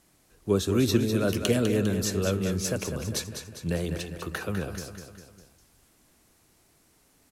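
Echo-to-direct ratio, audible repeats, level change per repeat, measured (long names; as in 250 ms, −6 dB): −6.5 dB, 4, −5.5 dB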